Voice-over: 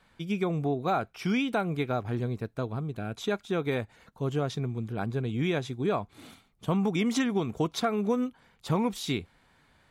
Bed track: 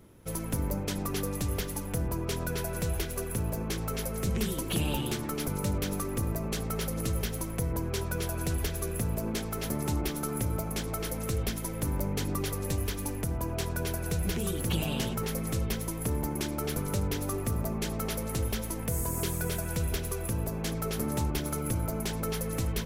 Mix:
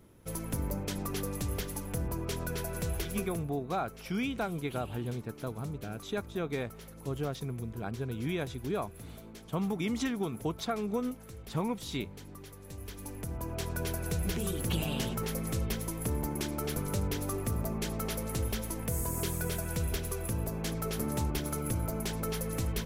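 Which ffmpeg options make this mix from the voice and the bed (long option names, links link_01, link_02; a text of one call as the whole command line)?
ffmpeg -i stem1.wav -i stem2.wav -filter_complex "[0:a]adelay=2850,volume=-5.5dB[link_01];[1:a]volume=11.5dB,afade=type=out:start_time=3.17:duration=0.31:silence=0.211349,afade=type=in:start_time=12.65:duration=1.21:silence=0.188365[link_02];[link_01][link_02]amix=inputs=2:normalize=0" out.wav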